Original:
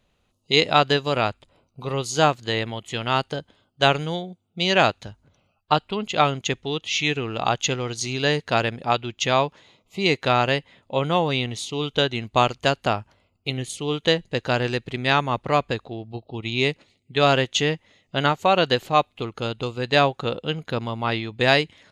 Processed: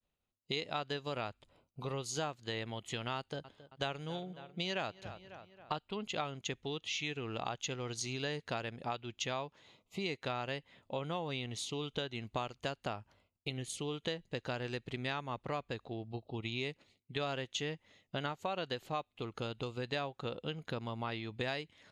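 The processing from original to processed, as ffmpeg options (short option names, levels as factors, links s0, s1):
-filter_complex "[0:a]asettb=1/sr,asplit=3[s0][s1][s2];[s0]atrim=end=3.174[s3];[s1]atrim=start=3.17:end=5.79,asetpts=PTS-STARTPTS,afade=t=in:d=0.004:c=qsin,afade=t=out:st=2.616:d=0.004:c=qsin,asplit=2[s4][s5];[s5]adelay=272,lowpass=f=3600:p=1,volume=0.0794,asplit=2[s6][s7];[s7]adelay=272,lowpass=f=3600:p=1,volume=0.53,asplit=2[s8][s9];[s9]adelay=272,lowpass=f=3600:p=1,volume=0.53,asplit=2[s10][s11];[s11]adelay=272,lowpass=f=3600:p=1,volume=0.53[s12];[s4][s6][s8][s10][s12]amix=inputs=5:normalize=0,atrim=end_sample=115542[s13];[s2]atrim=start=5.786[s14];[s3][s13]acrossfade=d=0.004:c1=hsin:c2=qsin[s15];[s15][s14]acrossfade=d=0.004:c1=qsin:c2=hsin,acompressor=threshold=0.0316:ratio=4,agate=range=0.0224:threshold=0.00126:ratio=3:detection=peak,volume=0.473"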